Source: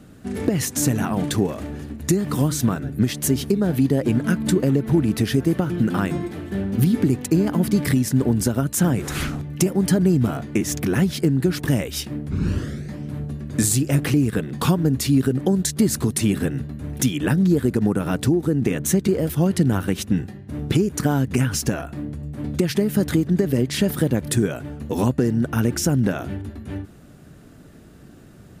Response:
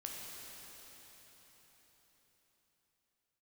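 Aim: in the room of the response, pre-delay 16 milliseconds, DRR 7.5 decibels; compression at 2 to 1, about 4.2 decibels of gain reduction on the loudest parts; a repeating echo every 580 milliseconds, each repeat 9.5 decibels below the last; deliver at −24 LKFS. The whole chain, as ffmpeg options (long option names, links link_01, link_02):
-filter_complex "[0:a]acompressor=threshold=-21dB:ratio=2,aecho=1:1:580|1160|1740|2320:0.335|0.111|0.0365|0.012,asplit=2[link_01][link_02];[1:a]atrim=start_sample=2205,adelay=16[link_03];[link_02][link_03]afir=irnorm=-1:irlink=0,volume=-6.5dB[link_04];[link_01][link_04]amix=inputs=2:normalize=0,volume=-0.5dB"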